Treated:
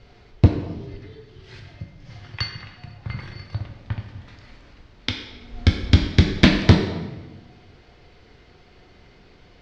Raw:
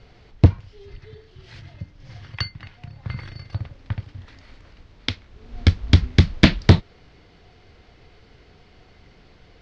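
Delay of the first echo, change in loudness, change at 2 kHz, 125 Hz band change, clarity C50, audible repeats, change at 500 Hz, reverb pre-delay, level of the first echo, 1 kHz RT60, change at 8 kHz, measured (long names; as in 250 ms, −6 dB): no echo audible, −0.5 dB, +1.0 dB, −1.0 dB, 5.5 dB, no echo audible, +1.5 dB, 5 ms, no echo audible, 1.1 s, can't be measured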